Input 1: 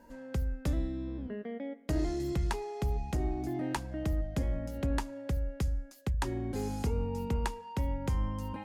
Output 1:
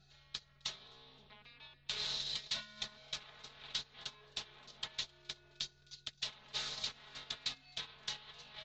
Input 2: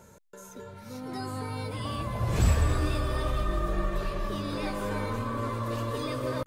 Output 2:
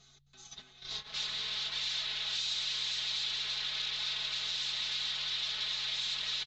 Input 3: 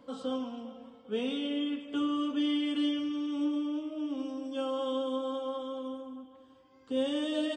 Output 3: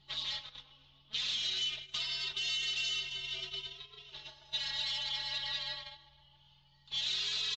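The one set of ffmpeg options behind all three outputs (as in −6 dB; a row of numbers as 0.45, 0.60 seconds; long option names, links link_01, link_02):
-filter_complex "[0:a]afftfilt=real='re*lt(hypot(re,im),0.178)':imag='im*lt(hypot(re,im),0.178)':win_size=1024:overlap=0.75,aresample=16000,aeval=exprs='0.0841*sin(PI/2*7.94*val(0)/0.0841)':channel_layout=same,aresample=44100,bandpass=frequency=4000:width_type=q:width=5.4:csg=0,acontrast=54,aeval=exprs='val(0)+0.00282*(sin(2*PI*60*n/s)+sin(2*PI*2*60*n/s)/2+sin(2*PI*3*60*n/s)/3+sin(2*PI*4*60*n/s)/4+sin(2*PI*5*60*n/s)/5)':channel_layout=same,acompressor=threshold=-40dB:ratio=2,afreqshift=-200,aecho=1:1:4.7:0.97,asplit=5[link_01][link_02][link_03][link_04][link_05];[link_02]adelay=264,afreqshift=42,volume=-15dB[link_06];[link_03]adelay=528,afreqshift=84,volume=-21.6dB[link_07];[link_04]adelay=792,afreqshift=126,volume=-28.1dB[link_08];[link_05]adelay=1056,afreqshift=168,volume=-34.7dB[link_09];[link_01][link_06][link_07][link_08][link_09]amix=inputs=5:normalize=0,agate=range=-15dB:threshold=-37dB:ratio=16:detection=peak,volume=-1.5dB" -ar 24000 -c:a libmp3lame -b:a 48k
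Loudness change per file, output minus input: −7.5, −2.0, −1.5 LU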